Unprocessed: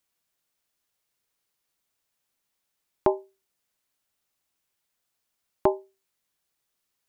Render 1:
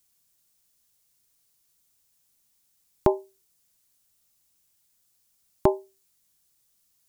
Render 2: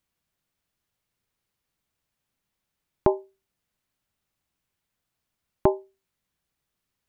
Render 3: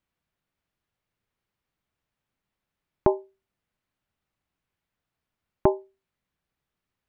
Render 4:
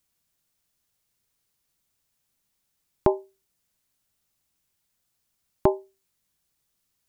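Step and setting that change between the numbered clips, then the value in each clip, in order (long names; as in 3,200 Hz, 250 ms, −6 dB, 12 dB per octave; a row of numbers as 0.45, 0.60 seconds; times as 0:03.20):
bass and treble, treble: +12, −5, −15, +4 decibels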